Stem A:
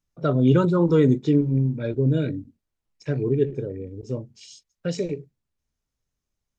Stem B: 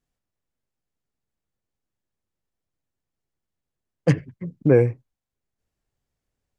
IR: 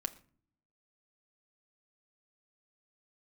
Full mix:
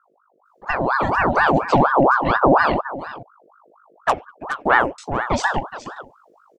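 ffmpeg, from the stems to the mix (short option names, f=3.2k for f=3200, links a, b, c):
-filter_complex "[0:a]adynamicequalizer=threshold=0.00501:dfrequency=2300:dqfactor=1.2:tfrequency=2300:tqfactor=1.2:attack=5:release=100:ratio=0.375:range=3.5:mode=boostabove:tftype=bell,acompressor=threshold=-20dB:ratio=6,adelay=450,volume=2.5dB,asplit=3[a][b][c];[a]atrim=end=2.81,asetpts=PTS-STARTPTS,afade=t=out:st=2.806:d=0.004:c=hsin[d];[b]atrim=start=2.81:end=4.98,asetpts=PTS-STARTPTS,volume=0[e];[c]atrim=start=4.98,asetpts=PTS-STARTPTS,afade=t=in:d=0.004:c=hsin[f];[d][e][f]concat=n=3:v=0:a=1,asplit=3[g][h][i];[h]volume=-18dB[j];[i]volume=-13dB[k];[1:a]aeval=exprs='val(0)+0.002*(sin(2*PI*50*n/s)+sin(2*PI*2*50*n/s)/2+sin(2*PI*3*50*n/s)/3+sin(2*PI*4*50*n/s)/4+sin(2*PI*5*50*n/s)/5)':c=same,aeval=exprs='0.596*(cos(1*acos(clip(val(0)/0.596,-1,1)))-cos(1*PI/2))+0.0335*(cos(3*acos(clip(val(0)/0.596,-1,1)))-cos(3*PI/2))+0.0668*(cos(4*acos(clip(val(0)/0.596,-1,1)))-cos(4*PI/2))':c=same,volume=-3dB,asplit=2[l][m];[m]volume=-8dB[n];[2:a]atrim=start_sample=2205[o];[j][o]afir=irnorm=-1:irlink=0[p];[k][n]amix=inputs=2:normalize=0,aecho=0:1:421:1[q];[g][l][p][q]amix=inputs=4:normalize=0,dynaudnorm=f=200:g=13:m=11.5dB,aeval=exprs='val(0)*sin(2*PI*880*n/s+880*0.55/4.2*sin(2*PI*4.2*n/s))':c=same"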